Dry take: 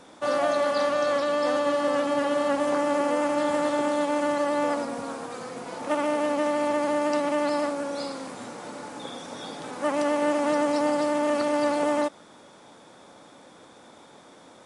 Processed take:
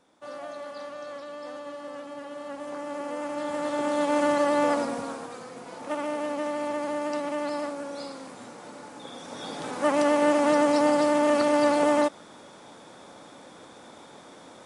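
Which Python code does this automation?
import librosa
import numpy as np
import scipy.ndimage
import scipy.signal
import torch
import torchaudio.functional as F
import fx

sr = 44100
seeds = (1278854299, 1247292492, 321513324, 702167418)

y = fx.gain(x, sr, db=fx.line((2.29, -14.5), (3.53, -6.0), (4.18, 2.0), (4.87, 2.0), (5.45, -5.0), (9.04, -5.0), (9.62, 2.5)))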